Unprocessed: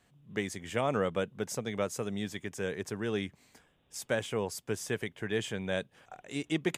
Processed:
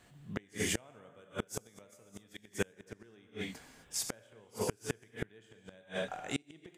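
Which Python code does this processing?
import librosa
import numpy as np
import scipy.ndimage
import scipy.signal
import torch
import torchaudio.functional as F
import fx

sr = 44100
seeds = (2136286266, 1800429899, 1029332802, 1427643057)

y = fx.rev_gated(x, sr, seeds[0], gate_ms=280, shape='flat', drr_db=2.5)
y = fx.gate_flip(y, sr, shuts_db=-24.0, range_db=-33)
y = fx.high_shelf(y, sr, hz=6600.0, db=9.5, at=(0.54, 2.73))
y = y * librosa.db_to_amplitude(5.5)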